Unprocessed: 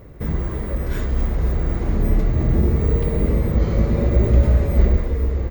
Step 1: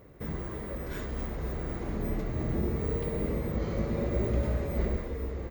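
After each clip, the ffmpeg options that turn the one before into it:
-af "lowshelf=f=110:g=-11,volume=0.422"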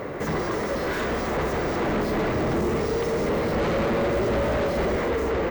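-filter_complex "[0:a]asplit=2[s0][s1];[s1]highpass=f=720:p=1,volume=70.8,asoftclip=type=tanh:threshold=0.158[s2];[s0][s2]amix=inputs=2:normalize=0,lowpass=f=1700:p=1,volume=0.501"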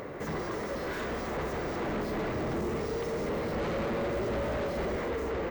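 -af "acompressor=mode=upward:threshold=0.0178:ratio=2.5,volume=0.398"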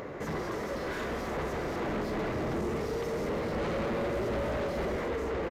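-af "aresample=32000,aresample=44100"

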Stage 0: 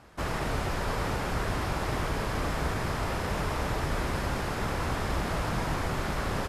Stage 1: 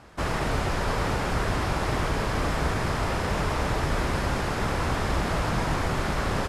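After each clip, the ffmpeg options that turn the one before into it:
-af "lowpass=11000,volume=1.58"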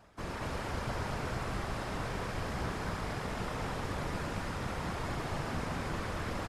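-af "areverse,acompressor=mode=upward:threshold=0.0355:ratio=2.5,areverse,afftfilt=real='hypot(re,im)*cos(2*PI*random(0))':imag='hypot(re,im)*sin(2*PI*random(1))':win_size=512:overlap=0.75,aecho=1:1:40.82|230.3:0.355|0.794,volume=0.473"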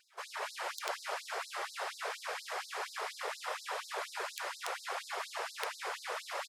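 -af "aeval=exprs='(mod(15.8*val(0)+1,2)-1)/15.8':c=same,afftfilt=real='re*gte(b*sr/1024,350*pow(3900/350,0.5+0.5*sin(2*PI*4.2*pts/sr)))':imag='im*gte(b*sr/1024,350*pow(3900/350,0.5+0.5*sin(2*PI*4.2*pts/sr)))':win_size=1024:overlap=0.75,volume=1.41"

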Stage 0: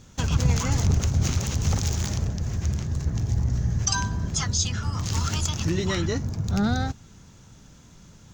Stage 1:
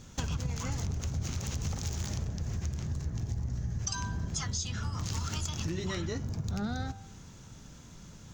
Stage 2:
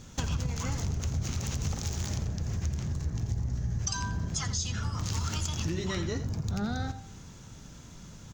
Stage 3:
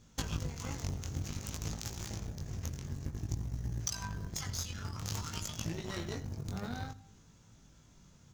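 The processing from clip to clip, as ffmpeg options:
-af "bandreject=f=98.1:t=h:w=4,bandreject=f=196.2:t=h:w=4,bandreject=f=294.3:t=h:w=4,bandreject=f=392.4:t=h:w=4,bandreject=f=490.5:t=h:w=4,bandreject=f=588.6:t=h:w=4,bandreject=f=686.7:t=h:w=4,bandreject=f=784.8:t=h:w=4,bandreject=f=882.9:t=h:w=4,bandreject=f=981:t=h:w=4,bandreject=f=1079.1:t=h:w=4,bandreject=f=1177.2:t=h:w=4,bandreject=f=1275.3:t=h:w=4,bandreject=f=1373.4:t=h:w=4,bandreject=f=1471.5:t=h:w=4,bandreject=f=1569.6:t=h:w=4,bandreject=f=1667.7:t=h:w=4,bandreject=f=1765.8:t=h:w=4,bandreject=f=1863.9:t=h:w=4,bandreject=f=1962:t=h:w=4,bandreject=f=2060.1:t=h:w=4,bandreject=f=2158.2:t=h:w=4,bandreject=f=2256.3:t=h:w=4,bandreject=f=2354.4:t=h:w=4,bandreject=f=2452.5:t=h:w=4,bandreject=f=2550.6:t=h:w=4,bandreject=f=2648.7:t=h:w=4,bandreject=f=2746.8:t=h:w=4,bandreject=f=2844.9:t=h:w=4,bandreject=f=2943:t=h:w=4,bandreject=f=3041.1:t=h:w=4,bandreject=f=3139.2:t=h:w=4,bandreject=f=3237.3:t=h:w=4,bandreject=f=3335.4:t=h:w=4,bandreject=f=3433.5:t=h:w=4,bandreject=f=3531.6:t=h:w=4,bandreject=f=3629.7:t=h:w=4,bandreject=f=3727.8:t=h:w=4,bandreject=f=3825.9:t=h:w=4,bandreject=f=3924:t=h:w=4,acompressor=threshold=0.0282:ratio=6"
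-af "aecho=1:1:85:0.237,volume=1.26"
-af "aeval=exprs='0.141*(cos(1*acos(clip(val(0)/0.141,-1,1)))-cos(1*PI/2))+0.0398*(cos(3*acos(clip(val(0)/0.141,-1,1)))-cos(3*PI/2))':c=same,acrusher=bits=7:mode=log:mix=0:aa=0.000001,flanger=delay=18:depth=3.7:speed=0.54,volume=2.11"

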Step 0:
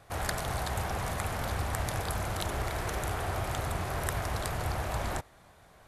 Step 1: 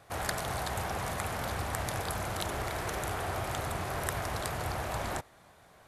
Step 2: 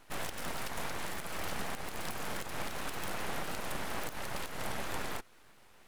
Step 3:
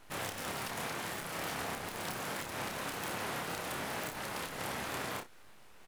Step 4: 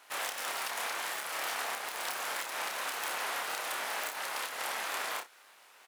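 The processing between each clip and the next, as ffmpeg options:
-af "lowshelf=f=68:g=-10.5"
-af "alimiter=limit=0.0668:level=0:latency=1:release=164,aeval=exprs='abs(val(0))':c=same"
-af "afftfilt=real='re*lt(hypot(re,im),0.0562)':imag='im*lt(hypot(re,im),0.0562)':win_size=1024:overlap=0.75,aecho=1:1:29|60:0.562|0.211"
-af "highpass=710,volume=1.68"

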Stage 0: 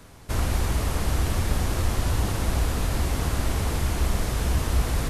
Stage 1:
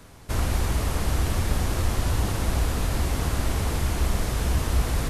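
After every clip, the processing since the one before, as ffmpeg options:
-af anull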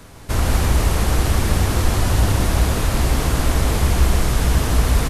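-af "aecho=1:1:158:0.596,volume=2"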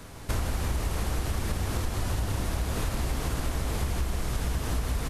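-af "acompressor=threshold=0.0794:ratio=12,volume=0.75"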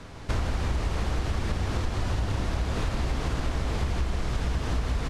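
-af "lowpass=5300,volume=1.19"

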